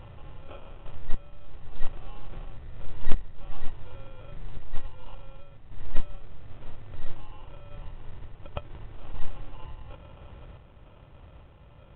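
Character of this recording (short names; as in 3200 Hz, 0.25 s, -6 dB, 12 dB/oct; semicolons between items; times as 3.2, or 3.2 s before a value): aliases and images of a low sample rate 1900 Hz, jitter 0%; random-step tremolo; µ-law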